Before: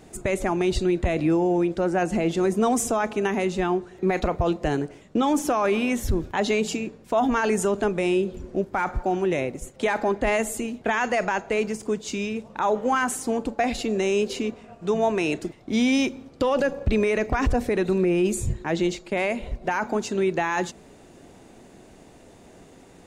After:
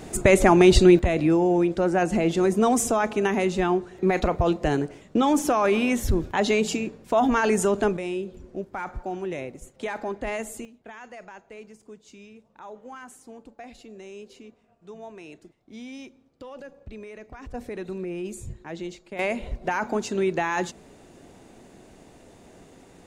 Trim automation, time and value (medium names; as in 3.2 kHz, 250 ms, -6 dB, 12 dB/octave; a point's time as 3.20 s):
+8.5 dB
from 0.99 s +1 dB
from 7.97 s -7.5 dB
from 10.65 s -19 dB
from 17.54 s -11 dB
from 19.19 s -1 dB